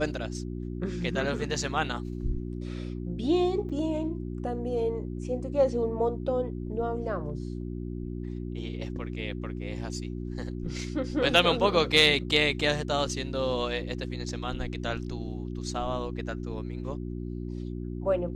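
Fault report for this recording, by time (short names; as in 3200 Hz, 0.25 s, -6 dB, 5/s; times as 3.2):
hum 60 Hz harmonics 6 -35 dBFS
3.69–3.7 gap 6.2 ms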